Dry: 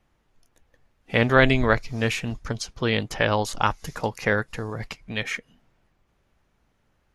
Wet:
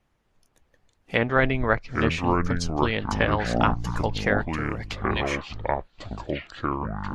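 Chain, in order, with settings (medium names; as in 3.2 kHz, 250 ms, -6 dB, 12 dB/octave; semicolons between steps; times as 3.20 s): low-pass that closes with the level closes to 2 kHz, closed at -16 dBFS; ever faster or slower copies 245 ms, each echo -7 st, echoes 2; harmonic-percussive split harmonic -6 dB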